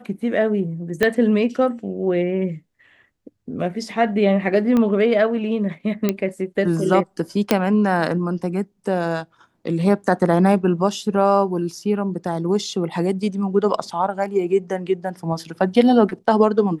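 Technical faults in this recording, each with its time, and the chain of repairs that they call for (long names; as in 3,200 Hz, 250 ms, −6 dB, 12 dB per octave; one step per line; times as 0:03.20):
0:01.03: click −5 dBFS
0:04.77: click −10 dBFS
0:06.09: click −6 dBFS
0:07.51: click −1 dBFS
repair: click removal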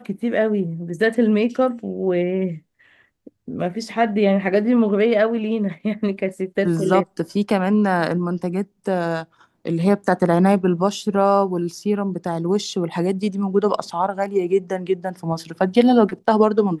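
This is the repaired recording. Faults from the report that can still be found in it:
0:01.03: click
0:04.77: click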